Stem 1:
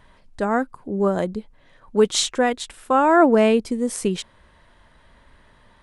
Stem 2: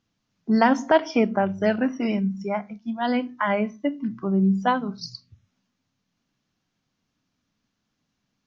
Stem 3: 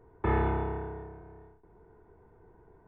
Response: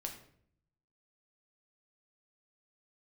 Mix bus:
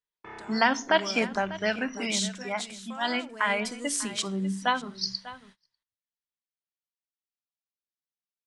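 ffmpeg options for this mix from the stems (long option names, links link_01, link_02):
-filter_complex "[0:a]alimiter=limit=-15.5dB:level=0:latency=1:release=138,crystalizer=i=2:c=0,asoftclip=type=tanh:threshold=-13dB,volume=-0.5dB,afade=type=in:start_time=0.68:duration=0.23:silence=0.298538,afade=type=out:start_time=1.78:duration=0.52:silence=0.354813,afade=type=in:start_time=3.29:duration=0.4:silence=0.421697,asplit=3[link_01][link_02][link_03];[link_02]volume=-8.5dB[link_04];[link_03]volume=-15.5dB[link_05];[1:a]volume=-1dB,asplit=2[link_06][link_07];[link_07]volume=-16.5dB[link_08];[2:a]highpass=160,volume=-11dB[link_09];[3:a]atrim=start_sample=2205[link_10];[link_04][link_10]afir=irnorm=-1:irlink=0[link_11];[link_05][link_08]amix=inputs=2:normalize=0,aecho=0:1:595:1[link_12];[link_01][link_06][link_09][link_11][link_12]amix=inputs=5:normalize=0,lowpass=6100,agate=range=-30dB:threshold=-47dB:ratio=16:detection=peak,tiltshelf=frequency=1300:gain=-9.5"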